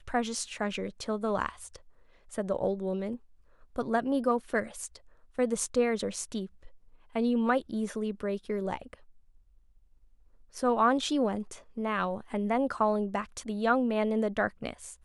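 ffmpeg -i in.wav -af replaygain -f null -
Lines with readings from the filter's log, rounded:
track_gain = +10.4 dB
track_peak = 0.162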